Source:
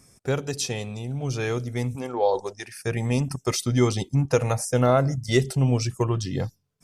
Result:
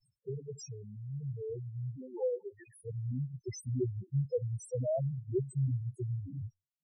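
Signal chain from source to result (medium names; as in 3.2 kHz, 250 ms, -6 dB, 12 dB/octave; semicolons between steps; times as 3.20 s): gate with hold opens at -44 dBFS; treble shelf 4.8 kHz +5.5 dB; loudest bins only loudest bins 2; trim -8.5 dB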